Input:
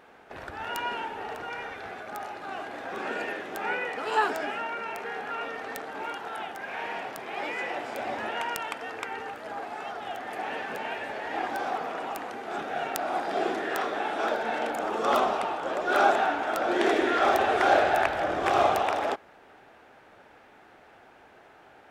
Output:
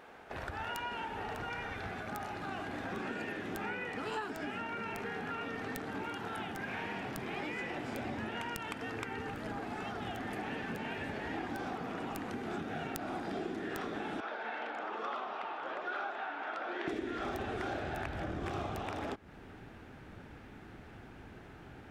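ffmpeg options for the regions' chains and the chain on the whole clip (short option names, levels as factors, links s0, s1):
-filter_complex "[0:a]asettb=1/sr,asplit=3[s0][s1][s2];[s0]atrim=end=14.204[s3];[s1]atrim=start=14.2:end=16.88,asetpts=PTS-STARTPTS,afade=t=in:d=0.004:c=qsin,afade=t=out:st=2.676:d=0.004:c=qsin,highpass=780,lowpass=4700,aemphasis=mode=reproduction:type=75kf[s4];[s2]atrim=start=16.876[s5];[s3][s4]acrossfade=d=0.004:c1=hsin:c2=qsin[s6];[s6][s5]acrossfade=d=0.004:c1=qsin:c2=hsin,asubboost=boost=8.5:cutoff=210,acompressor=threshold=0.0158:ratio=6"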